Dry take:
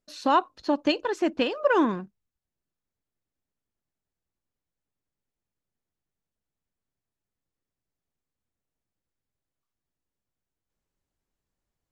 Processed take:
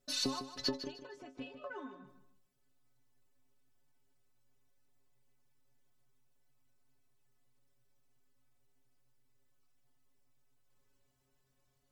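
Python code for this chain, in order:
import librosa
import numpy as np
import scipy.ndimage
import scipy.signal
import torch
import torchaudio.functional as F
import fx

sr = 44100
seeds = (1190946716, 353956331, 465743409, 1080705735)

y = fx.gate_flip(x, sr, shuts_db=-25.0, range_db=-31)
y = fx.stiff_resonator(y, sr, f0_hz=130.0, decay_s=0.25, stiffness=0.008)
y = fx.echo_feedback(y, sr, ms=153, feedback_pct=29, wet_db=-11.0)
y = F.gain(torch.from_numpy(y), 17.0).numpy()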